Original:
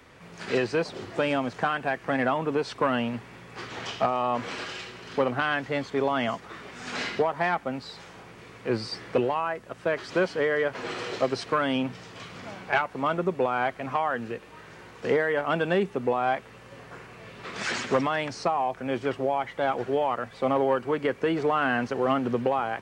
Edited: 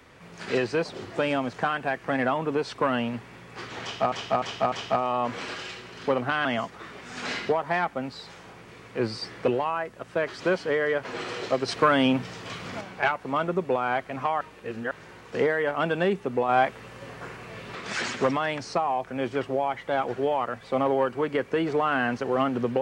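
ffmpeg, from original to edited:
-filter_complex "[0:a]asplit=11[s0][s1][s2][s3][s4][s5][s6][s7][s8][s9][s10];[s0]atrim=end=4.122[s11];[s1]atrim=start=3.818:end=4.122[s12];[s2]atrim=start=3.818:end=4.122[s13];[s3]atrim=start=3.818:end=5.552[s14];[s4]atrim=start=6.148:end=11.382[s15];[s5]atrim=start=11.378:end=12.512,asetpts=PTS-STARTPTS,volume=1.78[s16];[s6]atrim=start=12.508:end=14.112[s17];[s7]atrim=start=14.108:end=14.612,asetpts=PTS-STARTPTS,areverse[s18];[s8]atrim=start=14.608:end=16.192[s19];[s9]atrim=start=16.188:end=17.452,asetpts=PTS-STARTPTS,volume=1.68[s20];[s10]atrim=start=17.448[s21];[s11][s12]acrossfade=d=0.004:c1=hsin:c2=hsin[s22];[s22][s13]acrossfade=d=0.004:c1=hsin:c2=hsin[s23];[s23][s14]acrossfade=d=0.004:c1=hsin:c2=hsin[s24];[s24][s15]acrossfade=d=0.004:c1=hsin:c2=hsin[s25];[s25][s16]acrossfade=d=0.004:c1=hsin:c2=hsin[s26];[s26][s17]acrossfade=d=0.004:c1=hsin:c2=hsin[s27];[s27][s18]acrossfade=d=0.004:c1=hsin:c2=hsin[s28];[s28][s19]acrossfade=d=0.004:c1=hsin:c2=hsin[s29];[s29][s20]acrossfade=d=0.004:c1=hsin:c2=hsin[s30];[s30][s21]acrossfade=d=0.004:c1=hsin:c2=hsin"

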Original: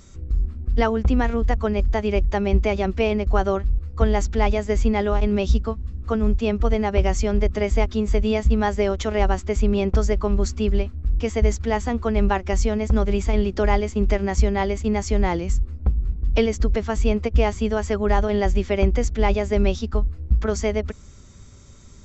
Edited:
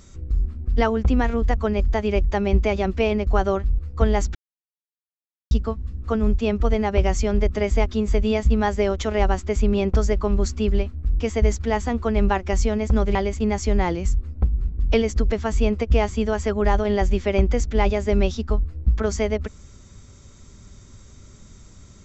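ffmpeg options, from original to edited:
-filter_complex "[0:a]asplit=4[s0][s1][s2][s3];[s0]atrim=end=4.35,asetpts=PTS-STARTPTS,afade=t=out:st=4.346:d=0.004:c=hsin[s4];[s1]atrim=start=4.35:end=5.51,asetpts=PTS-STARTPTS,volume=0[s5];[s2]atrim=start=5.51:end=13.152,asetpts=PTS-STARTPTS,afade=t=in:d=0.004:c=hsin[s6];[s3]atrim=start=14.588[s7];[s4][s5][s6]concat=n=3:v=0:a=1[s8];[s8][s7]acrossfade=d=0.004:c1=hsin:c2=hsin"

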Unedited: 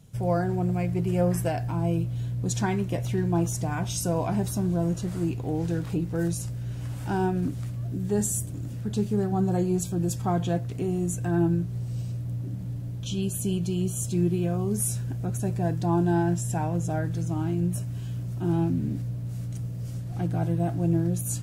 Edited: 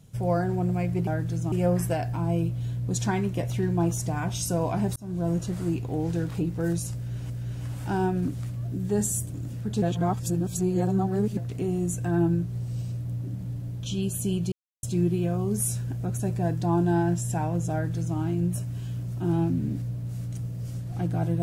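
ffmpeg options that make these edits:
-filter_complex "[0:a]asplit=9[s0][s1][s2][s3][s4][s5][s6][s7][s8];[s0]atrim=end=1.072[s9];[s1]atrim=start=16.918:end=17.372[s10];[s2]atrim=start=1.068:end=4.51,asetpts=PTS-STARTPTS,afade=t=out:st=3.438:d=0.004:c=hsin[s11];[s3]atrim=start=4.51:end=6.852,asetpts=PTS-STARTPTS,afade=t=in:d=0.33[s12];[s4]atrim=start=6.498:end=9.022[s13];[s5]atrim=start=9.018:end=10.572,asetpts=PTS-STARTPTS,areverse[s14];[s6]atrim=start=10.568:end=13.72,asetpts=PTS-STARTPTS,afade=t=out:st=3.148:d=0.004:c=hsin[s15];[s7]atrim=start=13.72:end=14.03,asetpts=PTS-STARTPTS,volume=0[s16];[s8]atrim=start=14.03,asetpts=PTS-STARTPTS,afade=t=in:d=0.004:c=hsin[s17];[s9][s10]acrossfade=d=0.004:c1=hsin:c2=hsin[s18];[s11][s12]concat=n=2:v=0:a=1[s19];[s18][s19]acrossfade=d=0.004:c1=hsin:c2=hsin[s20];[s20][s13]acrossfade=d=0.004:c1=hsin:c2=hsin[s21];[s21][s14]acrossfade=d=0.004:c1=hsin:c2=hsin[s22];[s15][s16][s17]concat=n=3:v=0:a=1[s23];[s22][s23]acrossfade=d=0.004:c1=hsin:c2=hsin"

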